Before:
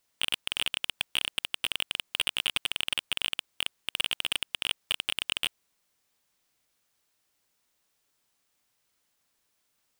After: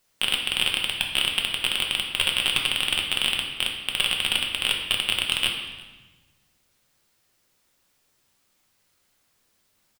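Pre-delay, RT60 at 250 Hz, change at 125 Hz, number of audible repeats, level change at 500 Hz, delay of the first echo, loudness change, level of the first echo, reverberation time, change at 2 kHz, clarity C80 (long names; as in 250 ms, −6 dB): 5 ms, 1.7 s, +11.5 dB, 1, +8.5 dB, 353 ms, +7.0 dB, −24.0 dB, 1.2 s, +7.5 dB, 6.5 dB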